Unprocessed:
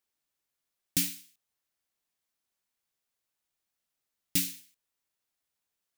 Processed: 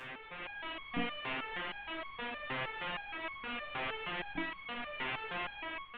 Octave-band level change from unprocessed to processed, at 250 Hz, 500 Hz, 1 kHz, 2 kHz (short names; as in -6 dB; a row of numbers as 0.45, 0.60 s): -0.5 dB, +18.5 dB, n/a, +12.5 dB